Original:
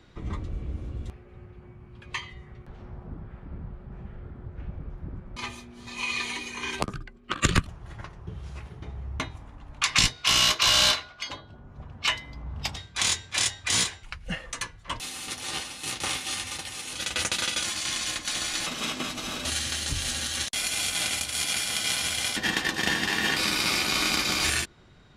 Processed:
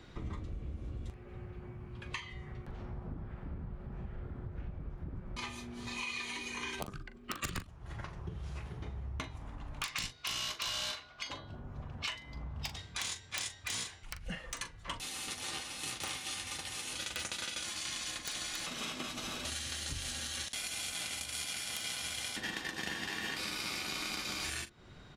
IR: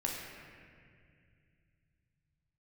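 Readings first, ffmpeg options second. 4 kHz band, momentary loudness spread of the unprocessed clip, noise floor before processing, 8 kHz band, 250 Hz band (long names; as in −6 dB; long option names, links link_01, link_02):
−12.5 dB, 19 LU, −50 dBFS, −11.5 dB, −9.5 dB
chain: -filter_complex "[0:a]acompressor=threshold=-40dB:ratio=4,aeval=exprs='(mod(17.8*val(0)+1,2)-1)/17.8':channel_layout=same,asplit=2[link_01][link_02];[link_02]adelay=41,volume=-12dB[link_03];[link_01][link_03]amix=inputs=2:normalize=0,volume=1dB"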